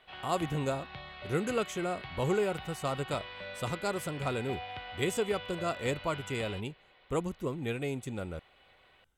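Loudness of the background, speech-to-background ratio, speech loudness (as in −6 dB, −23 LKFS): −43.5 LKFS, 9.0 dB, −34.5 LKFS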